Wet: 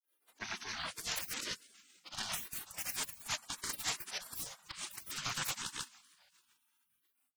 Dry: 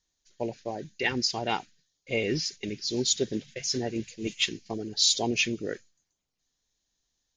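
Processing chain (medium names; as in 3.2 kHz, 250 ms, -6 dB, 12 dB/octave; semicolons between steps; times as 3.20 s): tracing distortion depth 0.36 ms; slow attack 130 ms; high-pass 480 Hz 24 dB/octave; comb 3.4 ms, depth 59%; compressor with a negative ratio -38 dBFS, ratio -1; feedback echo behind a low-pass 138 ms, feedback 70%, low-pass 1.5 kHz, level -22.5 dB; saturation -32 dBFS, distortion -14 dB; granulator 262 ms, grains 7.2 per s, pitch spread up and down by 7 st; spectral gate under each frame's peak -25 dB weak; trim +17.5 dB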